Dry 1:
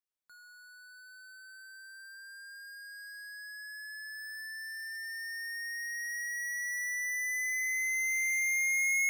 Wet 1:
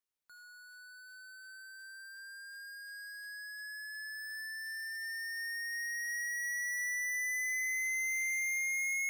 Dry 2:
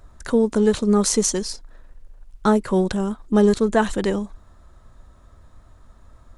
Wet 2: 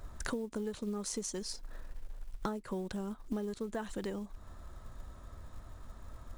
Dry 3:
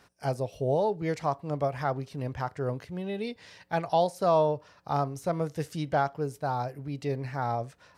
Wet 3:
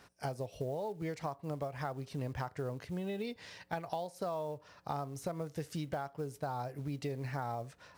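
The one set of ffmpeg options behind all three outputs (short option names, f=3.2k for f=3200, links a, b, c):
-af "acrusher=bits=7:mode=log:mix=0:aa=0.000001,acompressor=threshold=-34dB:ratio=20"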